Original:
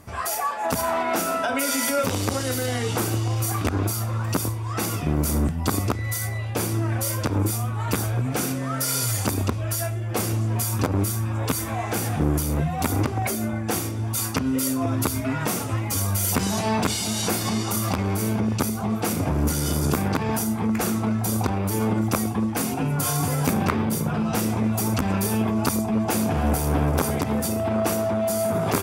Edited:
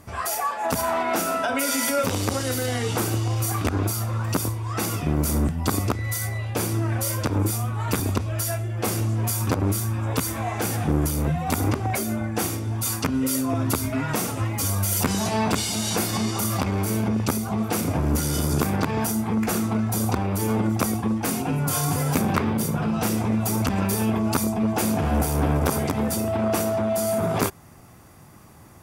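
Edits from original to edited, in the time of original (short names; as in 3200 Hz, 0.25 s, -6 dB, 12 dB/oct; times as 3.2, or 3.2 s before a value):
8–9.32 cut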